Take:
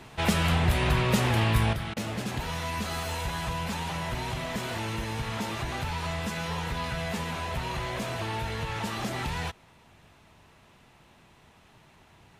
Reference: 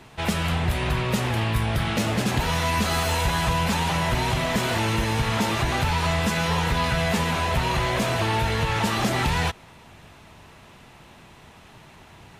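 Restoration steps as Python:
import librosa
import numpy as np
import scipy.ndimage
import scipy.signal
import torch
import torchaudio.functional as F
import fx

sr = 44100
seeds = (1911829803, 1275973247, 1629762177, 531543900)

y = fx.fix_interpolate(x, sr, at_s=(1.94,), length_ms=24.0)
y = fx.fix_level(y, sr, at_s=1.73, step_db=9.0)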